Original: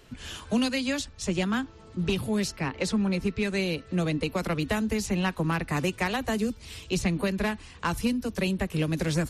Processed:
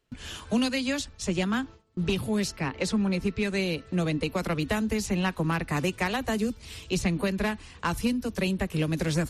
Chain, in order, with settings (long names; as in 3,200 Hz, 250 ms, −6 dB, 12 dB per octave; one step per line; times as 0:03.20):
noise gate with hold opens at −37 dBFS